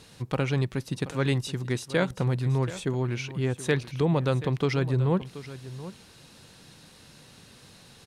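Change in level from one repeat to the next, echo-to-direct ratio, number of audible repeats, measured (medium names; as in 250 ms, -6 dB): no regular repeats, -15.0 dB, 1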